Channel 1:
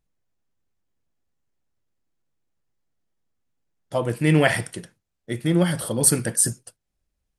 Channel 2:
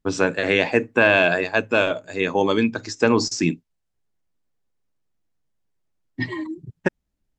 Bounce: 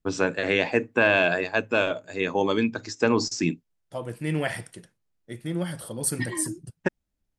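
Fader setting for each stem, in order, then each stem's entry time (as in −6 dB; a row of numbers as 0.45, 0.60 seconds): −9.5, −4.0 decibels; 0.00, 0.00 seconds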